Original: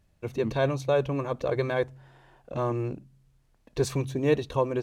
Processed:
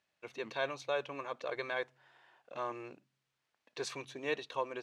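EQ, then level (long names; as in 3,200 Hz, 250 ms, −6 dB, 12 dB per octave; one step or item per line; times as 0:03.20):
high-pass filter 150 Hz 6 dB per octave
Bessel low-pass filter 2,000 Hz, order 2
first difference
+11.5 dB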